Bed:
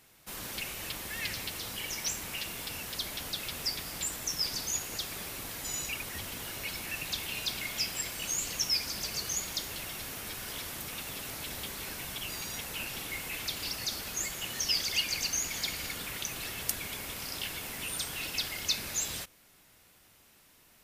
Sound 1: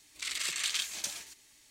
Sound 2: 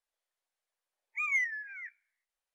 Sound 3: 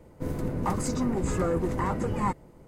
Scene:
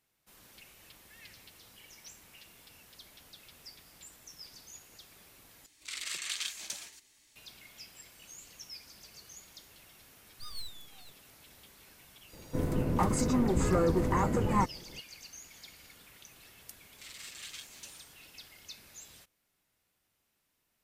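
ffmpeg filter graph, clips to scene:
ffmpeg -i bed.wav -i cue0.wav -i cue1.wav -i cue2.wav -filter_complex "[1:a]asplit=2[link_01][link_02];[0:a]volume=-17.5dB[link_03];[2:a]aeval=exprs='abs(val(0))':channel_layout=same[link_04];[link_02]asplit=2[link_05][link_06];[link_06]adelay=7.3,afreqshift=-2.5[link_07];[link_05][link_07]amix=inputs=2:normalize=1[link_08];[link_03]asplit=2[link_09][link_10];[link_09]atrim=end=5.664[link_11];[link_01]atrim=end=1.7,asetpts=PTS-STARTPTS,volume=-4dB[link_12];[link_10]atrim=start=7.356[link_13];[link_04]atrim=end=2.54,asetpts=PTS-STARTPTS,volume=-8dB,afade=type=in:duration=0.004:curve=hsin,afade=type=out:start_time=2.536:duration=0.004:curve=hsin,adelay=9230[link_14];[3:a]atrim=end=2.67,asetpts=PTS-STARTPTS,afade=type=in:duration=0.004:curve=hsin,afade=type=out:start_time=2.666:duration=0.004:curve=hsin,adelay=12330[link_15];[link_08]atrim=end=1.7,asetpts=PTS-STARTPTS,volume=-10dB,afade=type=in:duration=0.004:curve=hsin,afade=type=out:start_time=1.696:duration=0.004:curve=hsin,adelay=16790[link_16];[link_11][link_12]acrossfade=duration=0.004:curve1=hsin:curve2=hsin[link_17];[link_17][link_13]acrossfade=duration=0.004:curve1=hsin:curve2=hsin[link_18];[link_18][link_14][link_15][link_16]amix=inputs=4:normalize=0" out.wav

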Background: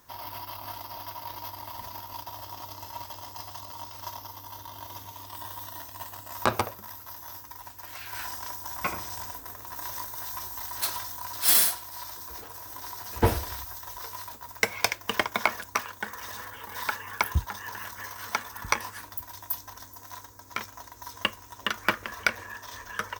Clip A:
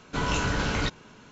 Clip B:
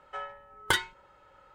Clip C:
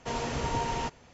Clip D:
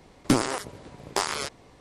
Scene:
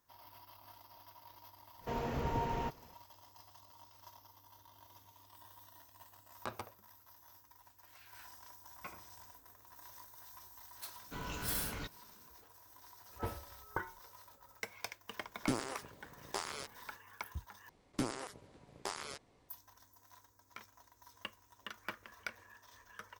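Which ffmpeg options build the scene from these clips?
ffmpeg -i bed.wav -i cue0.wav -i cue1.wav -i cue2.wav -i cue3.wav -filter_complex "[4:a]asplit=2[link_01][link_02];[0:a]volume=-18.5dB[link_03];[3:a]lowpass=frequency=1400:poles=1[link_04];[2:a]lowpass=frequency=1400:width=0.5412,lowpass=frequency=1400:width=1.3066[link_05];[link_03]asplit=2[link_06][link_07];[link_06]atrim=end=17.694[link_08];[link_02]atrim=end=1.8,asetpts=PTS-STARTPTS,volume=-15dB[link_09];[link_07]atrim=start=19.486[link_10];[link_04]atrim=end=1.13,asetpts=PTS-STARTPTS,volume=-4dB,afade=type=in:duration=0.004:curve=hsin,afade=type=out:start_time=1.126:duration=0.004:curve=hsin,adelay=1810[link_11];[1:a]atrim=end=1.31,asetpts=PTS-STARTPTS,volume=-16.5dB,afade=type=in:duration=0.004:curve=hsin,afade=type=out:start_time=1.306:duration=0.004:curve=hsin,adelay=484218S[link_12];[link_05]atrim=end=1.54,asetpts=PTS-STARTPTS,volume=-9.5dB,afade=type=in:duration=0.004:curve=hsin,afade=type=out:start_time=1.536:duration=0.004:curve=hsin,adelay=13060[link_13];[link_01]atrim=end=1.8,asetpts=PTS-STARTPTS,volume=-13.5dB,afade=type=in:duration=0.004:curve=hsin,afade=type=out:start_time=1.796:duration=0.004:curve=hsin,adelay=15180[link_14];[link_08][link_09]acrossfade=duration=0.004:curve1=hsin:curve2=hsin[link_15];[link_15][link_10]acrossfade=duration=0.004:curve1=hsin:curve2=hsin[link_16];[link_16][link_11][link_12][link_13][link_14]amix=inputs=5:normalize=0" out.wav

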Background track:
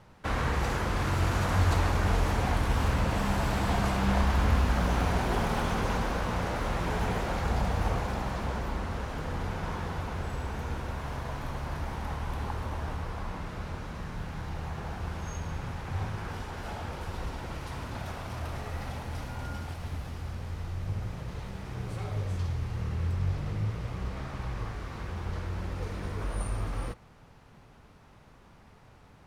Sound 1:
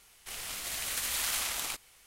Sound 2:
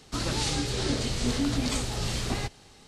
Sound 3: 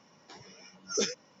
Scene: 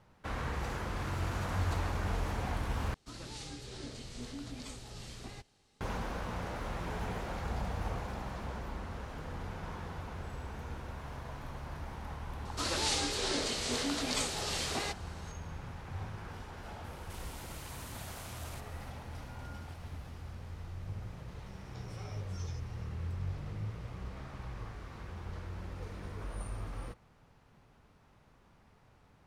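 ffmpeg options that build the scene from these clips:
ffmpeg -i bed.wav -i cue0.wav -i cue1.wav -i cue2.wav -filter_complex "[2:a]asplit=2[link_01][link_02];[0:a]volume=-8dB[link_03];[link_02]highpass=390[link_04];[1:a]acompressor=threshold=-44dB:ratio=4:attack=0.19:release=53:knee=1:detection=peak[link_05];[3:a]acompressor=threshold=-51dB:ratio=6:attack=3.2:release=140:knee=1:detection=peak[link_06];[link_03]asplit=2[link_07][link_08];[link_07]atrim=end=2.944[link_09];[link_01]atrim=end=2.87,asetpts=PTS-STARTPTS,volume=-16.5dB[link_10];[link_08]atrim=start=5.806[link_11];[link_04]atrim=end=2.87,asetpts=PTS-STARTPTS,volume=-1.5dB,afade=type=in:duration=0.004:curve=hsin,afade=type=out:start_time=2.866:duration=0.004:curve=hsin,adelay=12450[link_12];[link_05]atrim=end=2.06,asetpts=PTS-STARTPTS,volume=-3.5dB,afade=type=in:duration=0.004:curve=hsin,afade=type=out:start_time=2.056:duration=0.004:curve=hsin,adelay=742644S[link_13];[link_06]atrim=end=1.4,asetpts=PTS-STARTPTS,volume=-2dB,afade=type=in:duration=0.004:curve=hsin,afade=type=out:start_time=1.396:duration=0.004:curve=hsin,adelay=21460[link_14];[link_09][link_10]acrossfade=duration=0.004:curve1=hsin:curve2=hsin[link_15];[link_15][link_11]acrossfade=duration=0.004:curve1=hsin:curve2=hsin[link_16];[link_16][link_12][link_13][link_14]amix=inputs=4:normalize=0" out.wav

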